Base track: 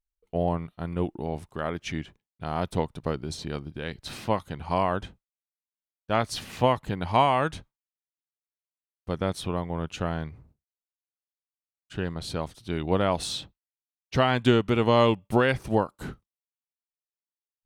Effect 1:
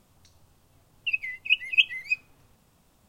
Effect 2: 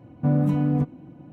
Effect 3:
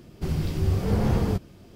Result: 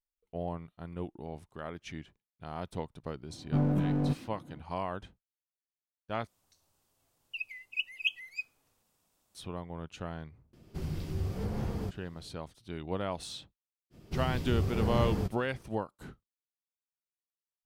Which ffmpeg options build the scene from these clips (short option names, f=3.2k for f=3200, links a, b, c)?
-filter_complex "[3:a]asplit=2[a][b];[0:a]volume=-10.5dB[c];[2:a]aeval=exprs='clip(val(0),-1,0.0891)':c=same[d];[1:a]bass=f=250:g=-8,treble=f=4k:g=6[e];[a]alimiter=limit=-15dB:level=0:latency=1:release=329[f];[c]asplit=2[g][h];[g]atrim=end=6.274[i];[e]atrim=end=3.08,asetpts=PTS-STARTPTS,volume=-12dB[j];[h]atrim=start=9.346[k];[d]atrim=end=1.32,asetpts=PTS-STARTPTS,volume=-5.5dB,afade=t=in:d=0.004:c=hsin,afade=t=out:st=1.316:d=0.004:c=hsin,adelay=145089S[l];[f]atrim=end=1.75,asetpts=PTS-STARTPTS,volume=-9.5dB,afade=t=in:d=0.004:c=hsin,afade=t=out:st=1.746:d=0.004:c=hsin,adelay=10530[m];[b]atrim=end=1.75,asetpts=PTS-STARTPTS,volume=-7dB,afade=t=in:d=0.05,afade=t=out:st=1.7:d=0.05,adelay=13900[n];[i][j]acrossfade=d=0.004:c1=hsin:c2=hsin[o];[o][k]acrossfade=d=0.004:c1=hsin:c2=hsin[p];[p][l][m][n]amix=inputs=4:normalize=0"